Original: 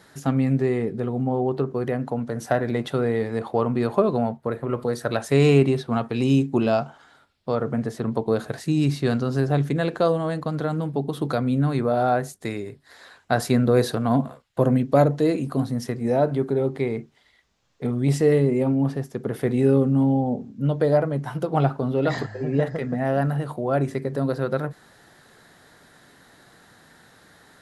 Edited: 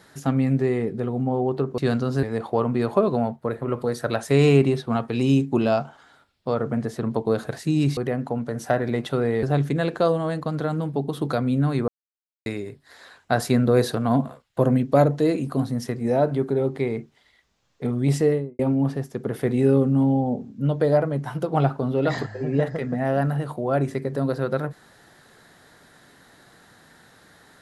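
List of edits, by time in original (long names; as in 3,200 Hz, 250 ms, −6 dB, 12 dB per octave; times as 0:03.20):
0:01.78–0:03.24: swap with 0:08.98–0:09.43
0:11.88–0:12.46: silence
0:18.17–0:18.59: fade out and dull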